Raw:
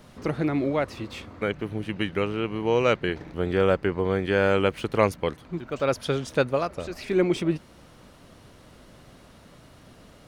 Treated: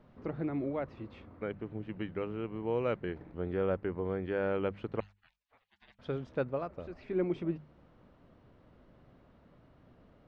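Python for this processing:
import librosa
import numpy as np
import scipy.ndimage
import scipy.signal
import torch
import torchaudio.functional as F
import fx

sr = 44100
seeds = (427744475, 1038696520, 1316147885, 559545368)

y = fx.spec_gate(x, sr, threshold_db=-30, keep='weak', at=(5.0, 5.99))
y = fx.spacing_loss(y, sr, db_at_10k=38)
y = fx.hum_notches(y, sr, base_hz=50, count=4)
y = F.gain(torch.from_numpy(y), -8.0).numpy()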